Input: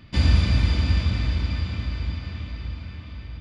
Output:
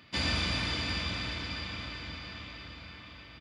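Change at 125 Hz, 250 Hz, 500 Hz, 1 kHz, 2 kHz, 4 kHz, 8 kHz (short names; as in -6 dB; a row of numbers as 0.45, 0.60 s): -17.0 dB, -9.0 dB, -3.5 dB, -1.0 dB, 0.0 dB, +0.5 dB, n/a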